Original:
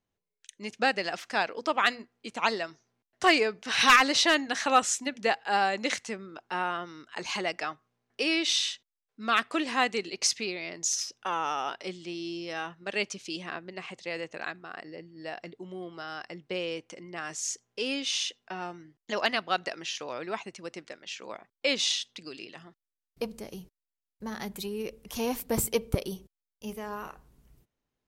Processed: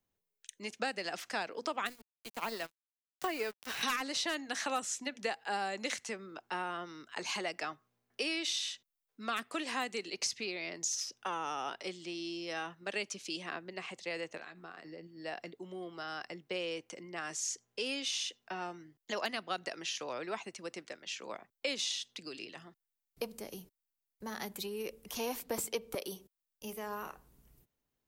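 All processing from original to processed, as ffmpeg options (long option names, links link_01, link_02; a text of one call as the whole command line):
ffmpeg -i in.wav -filter_complex "[0:a]asettb=1/sr,asplit=3[link_01][link_02][link_03];[link_01]atrim=end=1.874[link_04];[link_02]atrim=start=1.87:end=3.83,asetpts=PTS-STARTPTS,afade=type=in:duration=0.004:curve=qsin,afade=type=out:start_time=1.956:duration=0.004:curve=qsin,deesser=0.95,acrusher=bits=9:dc=4:mix=0:aa=0.000001,aeval=exprs='sgn(val(0))*max(abs(val(0))-0.01,0)':channel_layout=same[link_05];[link_03]atrim=start=3.826[link_06];[link_04][link_05]acrossfade=duration=0.004:curve1=hsin:curve2=qsin[link_07];[link_07][link_06]acrossfade=duration=0.004:curve1=qsin:curve2=hsin,asettb=1/sr,asplit=3[link_08][link_09][link_10];[link_08]atrim=end=14.374[link_11];[link_09]atrim=start=14.37:end=15.07,asetpts=PTS-STARTPTS,afade=type=in:duration=0.004:curve=qsin,afade=type=out:start_time=0.696:duration=0.004:curve=qsin,acompressor=threshold=-42dB:ratio=8:attack=3.2:release=140:knee=1:detection=peak,asplit=2[link_12][link_13];[link_13]adelay=12,volume=-6.5dB[link_14];[link_12][link_14]amix=inputs=2:normalize=0,atrim=end_sample=30870[link_15];[link_10]atrim=start=15.066[link_16];[link_11][link_15]acrossfade=duration=0.004:curve1=hsin:curve2=qsin[link_17];[link_17][link_16]acrossfade=duration=0.004:curve1=qsin:curve2=hsin,highshelf=frequency=11000:gain=12,acrossover=split=190|390|7200[link_18][link_19][link_20][link_21];[link_18]acompressor=threshold=-59dB:ratio=4[link_22];[link_19]acompressor=threshold=-43dB:ratio=4[link_23];[link_20]acompressor=threshold=-32dB:ratio=4[link_24];[link_21]acompressor=threshold=-45dB:ratio=4[link_25];[link_22][link_23][link_24][link_25]amix=inputs=4:normalize=0,volume=-2.5dB" out.wav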